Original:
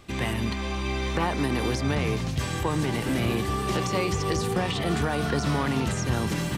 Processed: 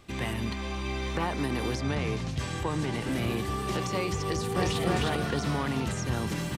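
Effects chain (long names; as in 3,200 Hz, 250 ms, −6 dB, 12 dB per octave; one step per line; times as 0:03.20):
0:01.76–0:03.12: low-pass filter 9,500 Hz 12 dB per octave
0:04.23–0:04.85: delay throw 310 ms, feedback 35%, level 0 dB
level −4 dB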